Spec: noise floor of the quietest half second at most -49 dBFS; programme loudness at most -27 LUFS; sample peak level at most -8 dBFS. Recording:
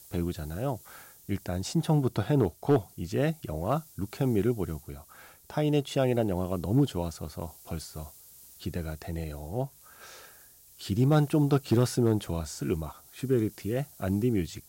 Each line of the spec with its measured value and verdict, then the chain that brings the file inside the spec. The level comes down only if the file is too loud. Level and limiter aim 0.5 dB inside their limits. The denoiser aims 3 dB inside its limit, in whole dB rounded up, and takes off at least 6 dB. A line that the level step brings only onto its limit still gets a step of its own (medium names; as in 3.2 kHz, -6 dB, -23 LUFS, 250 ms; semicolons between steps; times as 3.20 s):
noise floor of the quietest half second -55 dBFS: pass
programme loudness -29.5 LUFS: pass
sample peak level -14.5 dBFS: pass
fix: none needed